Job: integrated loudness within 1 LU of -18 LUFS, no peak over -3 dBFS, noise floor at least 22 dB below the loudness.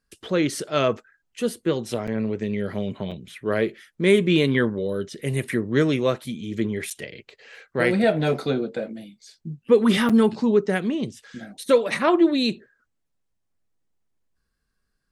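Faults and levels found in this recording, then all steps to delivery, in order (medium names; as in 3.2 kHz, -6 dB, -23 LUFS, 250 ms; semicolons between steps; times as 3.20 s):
dropouts 4; longest dropout 6.3 ms; loudness -23.0 LUFS; peak level -5.0 dBFS; loudness target -18.0 LUFS
-> interpolate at 2.07/3.11/6.90/10.09 s, 6.3 ms; trim +5 dB; peak limiter -3 dBFS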